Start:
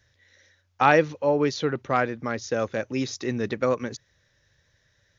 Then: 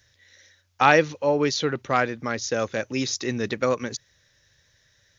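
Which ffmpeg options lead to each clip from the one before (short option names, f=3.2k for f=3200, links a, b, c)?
-af "highshelf=f=2.6k:g=9"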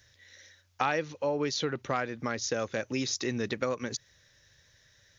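-af "acompressor=threshold=-29dB:ratio=3"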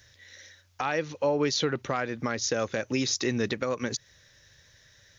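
-af "alimiter=limit=-20dB:level=0:latency=1:release=163,volume=4.5dB"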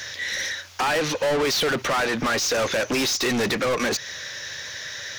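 -filter_complex "[0:a]asplit=2[a][b];[b]highpass=f=720:p=1,volume=34dB,asoftclip=type=tanh:threshold=-15dB[c];[a][c]amix=inputs=2:normalize=0,lowpass=f=5.9k:p=1,volume=-6dB,volume=-1dB"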